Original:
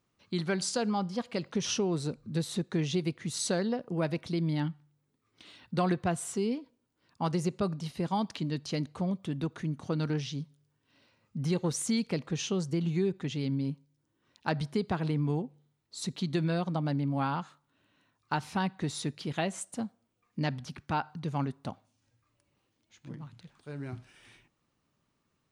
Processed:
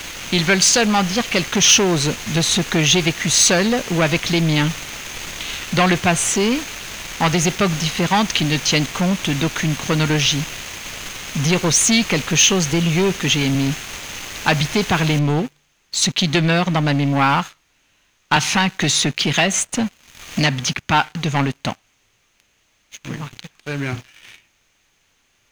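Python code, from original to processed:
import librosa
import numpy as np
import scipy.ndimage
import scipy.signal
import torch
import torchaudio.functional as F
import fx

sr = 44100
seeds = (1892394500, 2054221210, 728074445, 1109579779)

y = fx.highpass(x, sr, hz=89.0, slope=12, at=(10.29, 13.55))
y = fx.noise_floor_step(y, sr, seeds[0], at_s=15.19, before_db=-49, after_db=-65, tilt_db=3.0)
y = fx.band_squash(y, sr, depth_pct=70, at=(18.36, 20.74))
y = fx.peak_eq(y, sr, hz=6400.0, db=13.5, octaves=0.2)
y = fx.leveller(y, sr, passes=3)
y = fx.peak_eq(y, sr, hz=2600.0, db=13.0, octaves=1.8)
y = y * librosa.db_to_amplitude(2.5)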